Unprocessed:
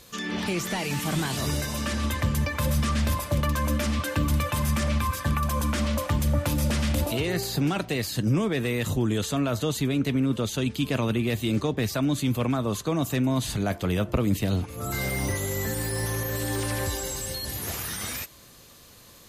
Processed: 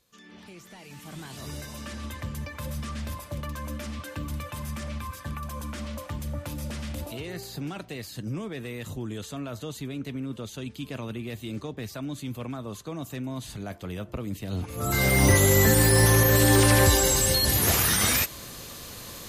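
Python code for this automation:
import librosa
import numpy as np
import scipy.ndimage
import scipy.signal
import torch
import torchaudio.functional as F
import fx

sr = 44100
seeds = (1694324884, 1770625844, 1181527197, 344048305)

y = fx.gain(x, sr, db=fx.line((0.71, -19.0), (1.59, -9.5), (14.46, -9.5), (14.68, 1.0), (15.34, 10.0)))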